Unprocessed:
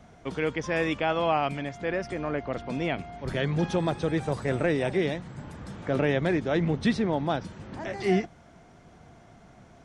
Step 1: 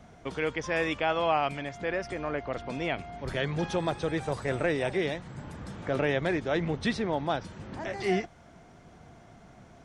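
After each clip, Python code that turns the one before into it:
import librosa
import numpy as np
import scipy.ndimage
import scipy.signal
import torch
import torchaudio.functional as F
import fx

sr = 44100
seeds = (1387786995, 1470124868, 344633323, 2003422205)

y = fx.dynamic_eq(x, sr, hz=200.0, q=0.73, threshold_db=-39.0, ratio=4.0, max_db=-6)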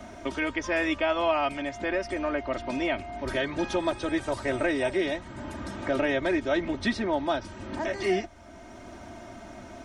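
y = x + 0.81 * np.pad(x, (int(3.2 * sr / 1000.0), 0))[:len(x)]
y = fx.band_squash(y, sr, depth_pct=40)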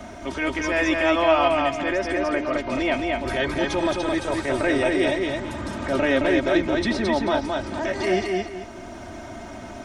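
y = fx.transient(x, sr, attack_db=-7, sustain_db=-1)
y = fx.echo_feedback(y, sr, ms=218, feedback_pct=29, wet_db=-3)
y = y * 10.0 ** (5.5 / 20.0)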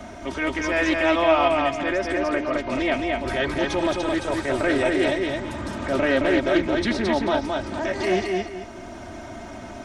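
y = fx.doppler_dist(x, sr, depth_ms=0.15)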